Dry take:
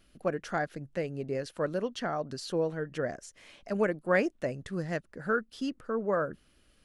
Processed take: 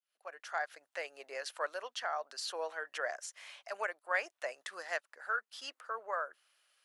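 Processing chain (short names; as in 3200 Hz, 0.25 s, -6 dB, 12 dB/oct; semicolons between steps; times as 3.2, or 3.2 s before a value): opening faded in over 1.17 s; HPF 730 Hz 24 dB/oct; vocal rider within 4 dB 0.5 s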